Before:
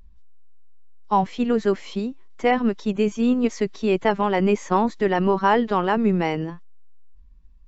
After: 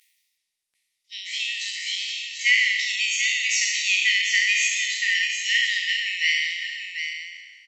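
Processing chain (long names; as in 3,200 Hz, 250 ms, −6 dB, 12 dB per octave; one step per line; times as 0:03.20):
peak hold with a decay on every bin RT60 1.53 s
linear-phase brick-wall high-pass 1,800 Hz
high-shelf EQ 3,600 Hz +7 dB
single-tap delay 738 ms −7.5 dB
level +7 dB
Opus 32 kbit/s 48,000 Hz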